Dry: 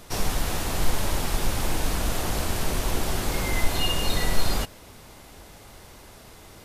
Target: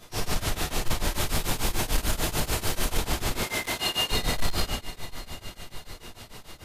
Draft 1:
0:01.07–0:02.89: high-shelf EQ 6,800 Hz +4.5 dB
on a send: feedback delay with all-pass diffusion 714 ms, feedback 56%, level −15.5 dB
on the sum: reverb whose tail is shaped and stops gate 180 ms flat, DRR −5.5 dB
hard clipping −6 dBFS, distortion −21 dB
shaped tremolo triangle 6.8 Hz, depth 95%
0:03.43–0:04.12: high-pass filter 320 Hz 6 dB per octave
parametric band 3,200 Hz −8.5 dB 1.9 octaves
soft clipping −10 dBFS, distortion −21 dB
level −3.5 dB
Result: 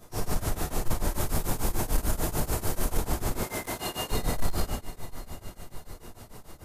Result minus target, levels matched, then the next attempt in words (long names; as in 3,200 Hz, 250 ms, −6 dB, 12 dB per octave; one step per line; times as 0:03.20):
4,000 Hz band −7.5 dB
0:01.07–0:02.89: high-shelf EQ 6,800 Hz +4.5 dB
on a send: feedback delay with all-pass diffusion 714 ms, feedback 56%, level −15.5 dB
on the sum: reverb whose tail is shaped and stops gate 180 ms flat, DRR −5.5 dB
hard clipping −6 dBFS, distortion −21 dB
shaped tremolo triangle 6.8 Hz, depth 95%
0:03.43–0:04.12: high-pass filter 320 Hz 6 dB per octave
parametric band 3,200 Hz +3.5 dB 1.9 octaves
soft clipping −10 dBFS, distortion −21 dB
level −3.5 dB